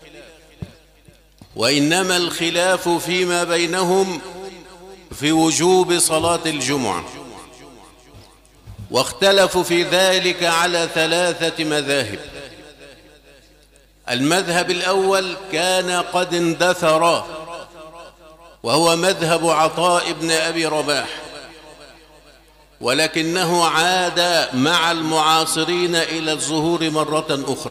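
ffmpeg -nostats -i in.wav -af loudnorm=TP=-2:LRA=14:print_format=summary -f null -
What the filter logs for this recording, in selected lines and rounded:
Input Integrated:    -17.5 LUFS
Input True Peak:      -3.1 dBTP
Input LRA:             5.5 LU
Input Threshold:     -28.9 LUFS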